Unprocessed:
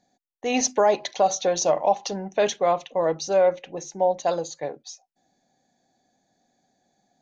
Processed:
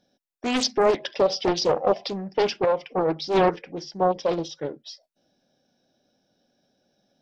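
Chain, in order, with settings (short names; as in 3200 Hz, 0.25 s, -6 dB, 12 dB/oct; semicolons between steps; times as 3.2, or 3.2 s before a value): formant shift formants -3 st; Doppler distortion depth 0.67 ms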